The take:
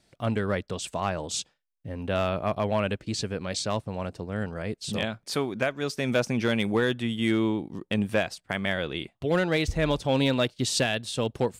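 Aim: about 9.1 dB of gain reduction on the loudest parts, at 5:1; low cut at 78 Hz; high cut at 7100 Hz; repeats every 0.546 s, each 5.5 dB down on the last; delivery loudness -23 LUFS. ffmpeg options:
-af "highpass=78,lowpass=7.1k,acompressor=threshold=-30dB:ratio=5,aecho=1:1:546|1092|1638|2184|2730|3276|3822:0.531|0.281|0.149|0.079|0.0419|0.0222|0.0118,volume=10.5dB"

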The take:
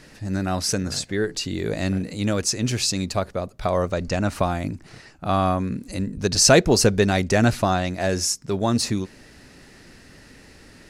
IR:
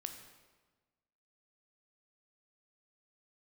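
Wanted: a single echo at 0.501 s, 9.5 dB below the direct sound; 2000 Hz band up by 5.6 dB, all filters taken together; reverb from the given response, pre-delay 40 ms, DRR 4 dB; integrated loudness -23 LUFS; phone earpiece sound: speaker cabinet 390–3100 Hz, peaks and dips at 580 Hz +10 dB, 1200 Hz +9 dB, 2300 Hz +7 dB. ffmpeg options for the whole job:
-filter_complex "[0:a]equalizer=f=2k:t=o:g=3,aecho=1:1:501:0.335,asplit=2[a][b];[1:a]atrim=start_sample=2205,adelay=40[c];[b][c]afir=irnorm=-1:irlink=0,volume=-1.5dB[d];[a][d]amix=inputs=2:normalize=0,highpass=390,equalizer=f=580:t=q:w=4:g=10,equalizer=f=1.2k:t=q:w=4:g=9,equalizer=f=2.3k:t=q:w=4:g=7,lowpass=f=3.1k:w=0.5412,lowpass=f=3.1k:w=1.3066,volume=-3.5dB"

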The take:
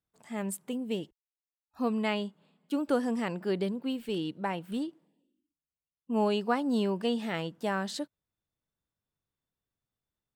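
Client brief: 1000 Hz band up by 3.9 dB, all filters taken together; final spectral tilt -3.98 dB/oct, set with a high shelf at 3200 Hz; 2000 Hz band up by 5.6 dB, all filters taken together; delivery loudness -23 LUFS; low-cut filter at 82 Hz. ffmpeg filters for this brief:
-af "highpass=82,equalizer=f=1k:t=o:g=4,equalizer=f=2k:t=o:g=8.5,highshelf=f=3.2k:g=-8.5,volume=8dB"

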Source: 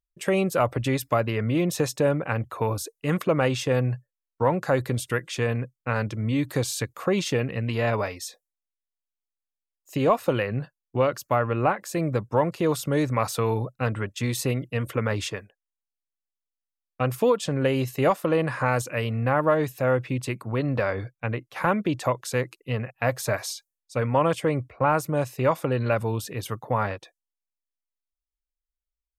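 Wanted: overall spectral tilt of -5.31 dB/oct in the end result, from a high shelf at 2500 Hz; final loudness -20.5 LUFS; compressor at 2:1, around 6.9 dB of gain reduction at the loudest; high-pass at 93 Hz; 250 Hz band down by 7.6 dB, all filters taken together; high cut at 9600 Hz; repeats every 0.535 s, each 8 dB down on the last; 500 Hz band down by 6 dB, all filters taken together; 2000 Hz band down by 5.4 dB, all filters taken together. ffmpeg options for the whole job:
-af "highpass=93,lowpass=9.6k,equalizer=f=250:t=o:g=-9,equalizer=f=500:t=o:g=-4.5,equalizer=f=2k:t=o:g=-5.5,highshelf=f=2.5k:g=-3,acompressor=threshold=-33dB:ratio=2,aecho=1:1:535|1070|1605|2140|2675:0.398|0.159|0.0637|0.0255|0.0102,volume=14.5dB"

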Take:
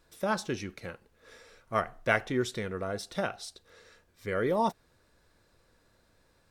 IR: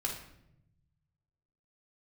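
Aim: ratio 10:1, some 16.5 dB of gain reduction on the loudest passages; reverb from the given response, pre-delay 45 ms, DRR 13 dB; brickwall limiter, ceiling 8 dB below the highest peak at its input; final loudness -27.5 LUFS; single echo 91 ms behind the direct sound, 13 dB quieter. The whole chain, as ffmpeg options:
-filter_complex "[0:a]acompressor=threshold=-39dB:ratio=10,alimiter=level_in=11dB:limit=-24dB:level=0:latency=1,volume=-11dB,aecho=1:1:91:0.224,asplit=2[a][b];[1:a]atrim=start_sample=2205,adelay=45[c];[b][c]afir=irnorm=-1:irlink=0,volume=-16dB[d];[a][d]amix=inputs=2:normalize=0,volume=20dB"

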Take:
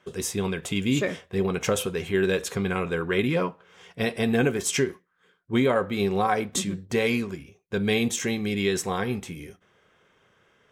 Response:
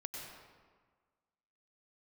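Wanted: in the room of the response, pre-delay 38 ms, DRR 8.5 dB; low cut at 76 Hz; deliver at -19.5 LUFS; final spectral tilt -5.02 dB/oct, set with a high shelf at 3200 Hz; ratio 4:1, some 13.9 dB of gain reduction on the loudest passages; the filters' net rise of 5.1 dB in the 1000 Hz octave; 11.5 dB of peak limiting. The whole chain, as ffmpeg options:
-filter_complex "[0:a]highpass=76,equalizer=f=1k:t=o:g=8,highshelf=f=3.2k:g=-8.5,acompressor=threshold=-33dB:ratio=4,alimiter=level_in=3dB:limit=-24dB:level=0:latency=1,volume=-3dB,asplit=2[a][b];[1:a]atrim=start_sample=2205,adelay=38[c];[b][c]afir=irnorm=-1:irlink=0,volume=-7.5dB[d];[a][d]amix=inputs=2:normalize=0,volume=18.5dB"

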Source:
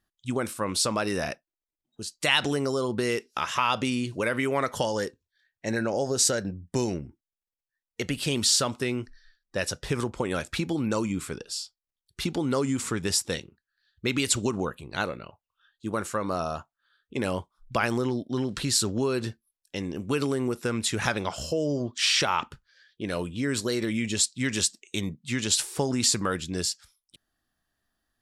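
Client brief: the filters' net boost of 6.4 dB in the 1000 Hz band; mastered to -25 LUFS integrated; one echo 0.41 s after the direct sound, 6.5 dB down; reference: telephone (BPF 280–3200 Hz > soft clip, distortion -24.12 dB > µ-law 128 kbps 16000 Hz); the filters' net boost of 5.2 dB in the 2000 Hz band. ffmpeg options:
-af "highpass=280,lowpass=3.2k,equalizer=f=1k:t=o:g=6.5,equalizer=f=2k:t=o:g=5.5,aecho=1:1:410:0.473,asoftclip=threshold=-7dB,volume=2.5dB" -ar 16000 -c:a pcm_mulaw

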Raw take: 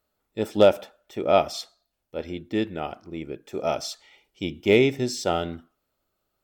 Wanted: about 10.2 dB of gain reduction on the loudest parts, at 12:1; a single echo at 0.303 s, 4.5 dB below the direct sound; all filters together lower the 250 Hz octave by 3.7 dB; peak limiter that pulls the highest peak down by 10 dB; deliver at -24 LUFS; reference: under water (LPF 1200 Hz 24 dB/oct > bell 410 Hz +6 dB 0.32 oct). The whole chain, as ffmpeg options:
-af "equalizer=f=250:t=o:g=-7.5,acompressor=threshold=-22dB:ratio=12,alimiter=limit=-20.5dB:level=0:latency=1,lowpass=f=1.2k:w=0.5412,lowpass=f=1.2k:w=1.3066,equalizer=f=410:t=o:w=0.32:g=6,aecho=1:1:303:0.596,volume=9dB"

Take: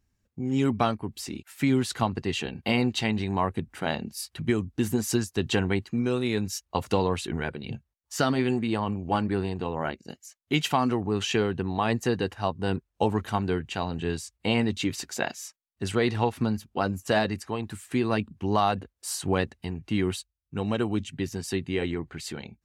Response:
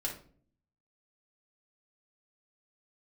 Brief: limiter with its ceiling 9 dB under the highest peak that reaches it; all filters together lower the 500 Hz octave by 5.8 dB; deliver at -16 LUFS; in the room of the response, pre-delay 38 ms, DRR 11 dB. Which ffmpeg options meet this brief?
-filter_complex "[0:a]equalizer=f=500:t=o:g=-8,alimiter=limit=-19dB:level=0:latency=1,asplit=2[a][b];[1:a]atrim=start_sample=2205,adelay=38[c];[b][c]afir=irnorm=-1:irlink=0,volume=-13dB[d];[a][d]amix=inputs=2:normalize=0,volume=15.5dB"

